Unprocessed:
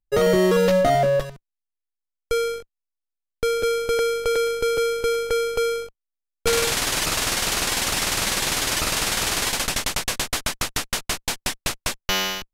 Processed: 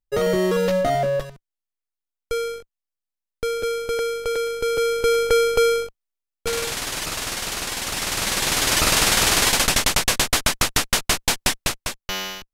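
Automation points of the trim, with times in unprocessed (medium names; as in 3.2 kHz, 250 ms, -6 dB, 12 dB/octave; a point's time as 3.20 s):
4.50 s -2.5 dB
5.23 s +5 dB
5.80 s +5 dB
6.47 s -4.5 dB
7.80 s -4.5 dB
8.89 s +5.5 dB
11.53 s +5.5 dB
12.01 s -5 dB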